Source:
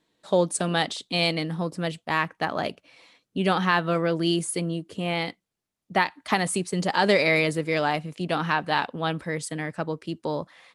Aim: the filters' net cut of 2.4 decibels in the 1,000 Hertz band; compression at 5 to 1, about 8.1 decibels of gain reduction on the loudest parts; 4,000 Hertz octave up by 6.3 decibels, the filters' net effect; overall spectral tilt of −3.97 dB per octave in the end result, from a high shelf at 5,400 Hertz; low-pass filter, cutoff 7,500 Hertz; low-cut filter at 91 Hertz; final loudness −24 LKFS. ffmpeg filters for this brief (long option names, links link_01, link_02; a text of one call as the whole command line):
ffmpeg -i in.wav -af "highpass=91,lowpass=7500,equalizer=frequency=1000:width_type=o:gain=-3.5,equalizer=frequency=4000:width_type=o:gain=7,highshelf=frequency=5400:gain=3.5,acompressor=threshold=-24dB:ratio=5,volume=5.5dB" out.wav